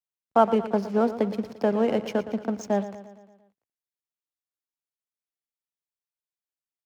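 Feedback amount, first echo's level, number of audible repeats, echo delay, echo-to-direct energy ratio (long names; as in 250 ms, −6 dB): 56%, −13.5 dB, 5, 115 ms, −12.0 dB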